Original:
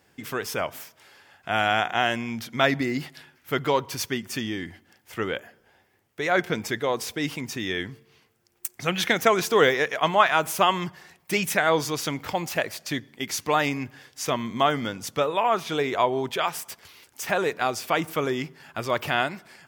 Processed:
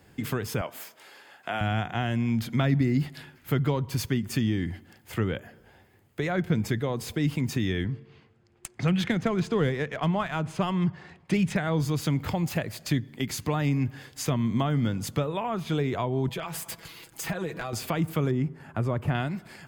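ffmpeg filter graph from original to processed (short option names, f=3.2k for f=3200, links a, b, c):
-filter_complex "[0:a]asettb=1/sr,asplit=3[a][b][c];[a]atrim=end=0.614[d];[b]atrim=start=0.61:end=1.61,asetpts=PTS-STARTPTS,afade=t=in:d=0.004:c=qsin,afade=t=out:st=0.996:d=0.004:c=qsin,highpass=350,asplit=2[e][f];[f]adelay=17,volume=-13dB[g];[e][g]amix=inputs=2:normalize=0,atrim=end_sample=44100[h];[c]atrim=start=1.606[i];[d][h]acrossfade=d=0.004:c1=hsin:c2=qsin[j];[j][i]acrossfade=d=0.004:c1=qsin:c2=hsin,asettb=1/sr,asplit=3[k][l][m];[k]atrim=end=7.844[n];[l]atrim=start=7.84:end=11.56,asetpts=PTS-STARTPTS,afade=t=in:d=0.004:c=qsin,afade=t=out:st=3.716:d=0.004:c=qsin,highpass=60,equalizer=f=13k:t=o:w=0.4:g=-9.5,adynamicsmooth=sensitivity=3.5:basefreq=4.4k[o];[m]atrim=start=11.556[p];[n][o]acrossfade=d=0.004:c1=hsin:c2=qsin[q];[q][p]acrossfade=d=0.004:c1=qsin:c2=hsin,asettb=1/sr,asplit=3[r][s][t];[r]atrim=end=16.274[u];[s]atrim=start=16.27:end=17.73,asetpts=PTS-STARTPTS,afade=t=in:d=0.004:c=qsin,afade=t=out:st=1.456:d=0.004:c=qsin,aecho=1:1:6.1:0.76,atrim=end_sample=64386,acompressor=threshold=-31dB:ratio=4:attack=3.2:release=140:knee=1:detection=peak,asoftclip=type=hard:threshold=-23.5dB[v];[t]atrim=start=17.726[w];[u][v]acrossfade=d=0.004:c1=hsin:c2=qsin[x];[x][w]acrossfade=d=0.004:c1=qsin:c2=hsin,asettb=1/sr,asplit=3[y][z][aa];[y]atrim=end=18.314[ab];[z]atrim=start=18.31:end=19.15,asetpts=PTS-STARTPTS,afade=t=in:d=0.004:c=qsin,afade=t=out:st=0.836:d=0.004:c=qsin,lowpass=9.1k,equalizer=f=4.2k:w=0.67:g=-13.5[ac];[aa]atrim=start=19.146[ad];[ab][ac]acrossfade=d=0.004:c1=hsin:c2=qsin[ae];[ae][ad]acrossfade=d=0.004:c1=qsin:c2=hsin,lowshelf=f=270:g=11.5,bandreject=f=5.7k:w=8.7,acrossover=split=210[af][ag];[ag]acompressor=threshold=-34dB:ratio=3[ah];[af][ah]amix=inputs=2:normalize=0,volume=2dB"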